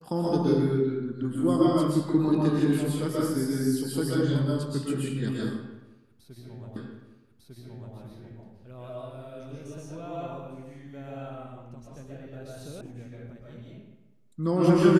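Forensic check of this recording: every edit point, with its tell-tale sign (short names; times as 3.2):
6.76 repeat of the last 1.2 s
12.81 sound cut off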